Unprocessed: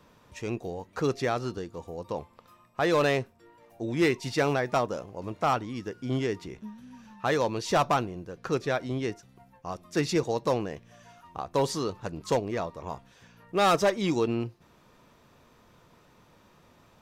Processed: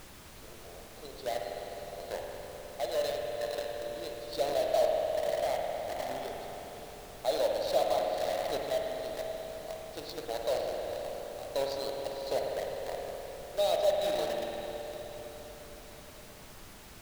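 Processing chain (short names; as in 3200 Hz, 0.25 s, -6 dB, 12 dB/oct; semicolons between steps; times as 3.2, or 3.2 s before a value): double band-pass 1600 Hz, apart 2.7 oct; on a send: diffused feedback echo 0.519 s, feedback 45%, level -7 dB; on the sum: random-step tremolo; in parallel at -3.5 dB: requantised 6-bit, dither none; on the sum: spring tank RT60 3.7 s, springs 51 ms, chirp 80 ms, DRR 0 dB; added noise pink -50 dBFS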